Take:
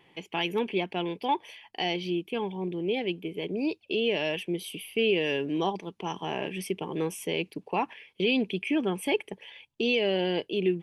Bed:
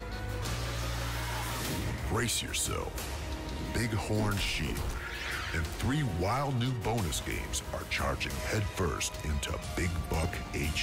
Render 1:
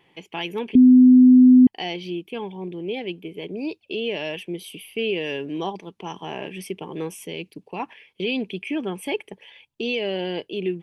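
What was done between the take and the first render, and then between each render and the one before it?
0.75–1.67 bleep 253 Hz -7.5 dBFS; 7.26–7.8 bell 1000 Hz -6.5 dB 2.6 oct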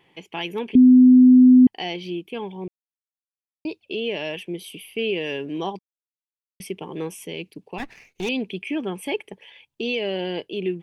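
2.68–3.65 mute; 5.79–6.6 mute; 7.78–8.29 minimum comb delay 0.46 ms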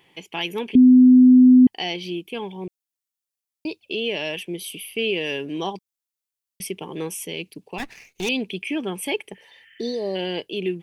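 9.38–10.13 spectral repair 1300–3500 Hz before; high shelf 3700 Hz +9.5 dB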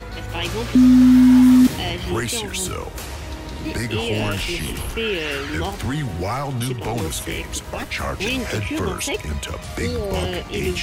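add bed +6 dB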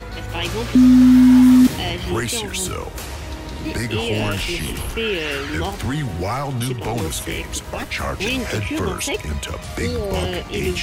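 gain +1 dB

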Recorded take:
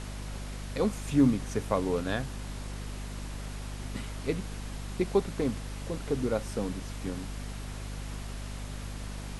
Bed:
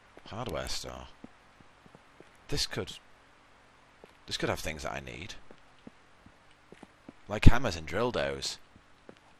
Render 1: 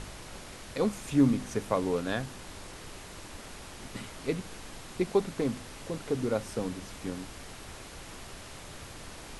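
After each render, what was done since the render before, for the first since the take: de-hum 50 Hz, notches 5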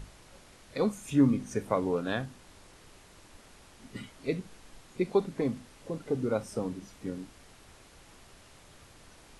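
noise print and reduce 10 dB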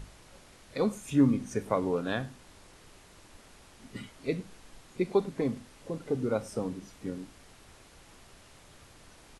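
echo 0.103 s -23 dB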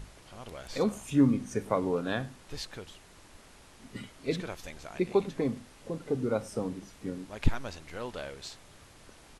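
add bed -8.5 dB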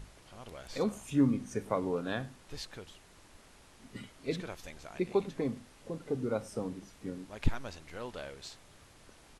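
gain -3.5 dB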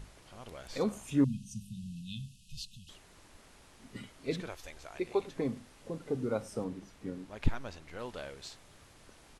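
1.24–2.89 brick-wall FIR band-stop 230–2500 Hz; 4.49–5.36 bell 190 Hz -12.5 dB; 6.64–7.99 high shelf 4700 Hz -5.5 dB

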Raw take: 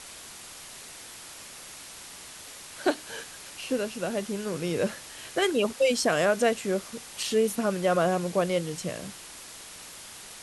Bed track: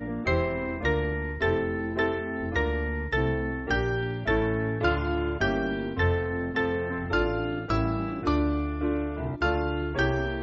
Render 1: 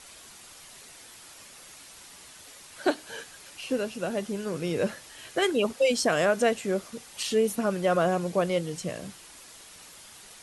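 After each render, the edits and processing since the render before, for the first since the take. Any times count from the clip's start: denoiser 6 dB, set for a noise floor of -45 dBFS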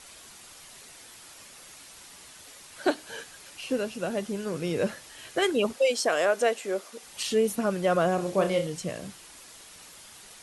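5.78–7.03 Chebyshev high-pass 430 Hz; 8.15–8.67 flutter echo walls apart 5.4 m, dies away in 0.28 s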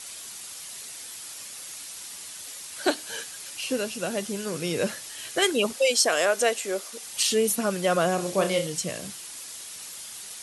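HPF 71 Hz; high shelf 2900 Hz +11.5 dB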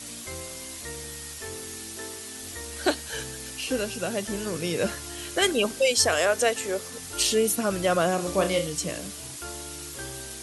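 add bed track -14.5 dB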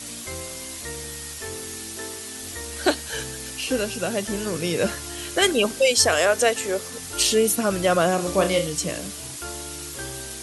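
gain +3.5 dB

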